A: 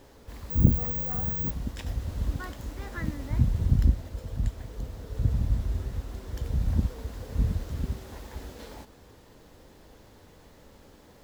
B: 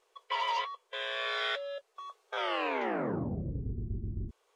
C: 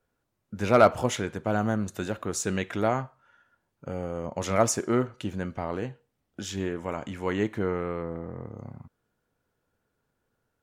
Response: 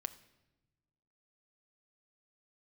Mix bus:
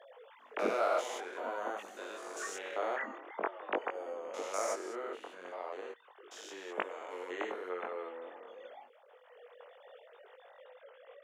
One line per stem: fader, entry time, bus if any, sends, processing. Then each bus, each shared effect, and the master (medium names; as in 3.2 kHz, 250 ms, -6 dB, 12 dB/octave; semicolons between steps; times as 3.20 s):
-0.5 dB, 0.00 s, send -20 dB, formants replaced by sine waves; auto duck -8 dB, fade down 0.20 s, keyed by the third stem
-4.5 dB, 1.05 s, no send, Bessel low-pass 690 Hz, order 2; peak limiter -32 dBFS, peak gain reduction 7 dB
-2.5 dB, 0.00 s, no send, spectrogram pixelated in time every 200 ms; high-pass 230 Hz 12 dB/octave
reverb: on, RT60 1.1 s, pre-delay 4 ms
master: chorus 0.47 Hz, delay 19.5 ms, depth 3.1 ms; high-pass 410 Hz 24 dB/octave